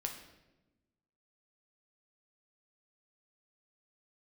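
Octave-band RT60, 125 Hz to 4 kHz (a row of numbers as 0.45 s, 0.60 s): 1.5 s, 1.5 s, 1.2 s, 0.90 s, 0.85 s, 0.75 s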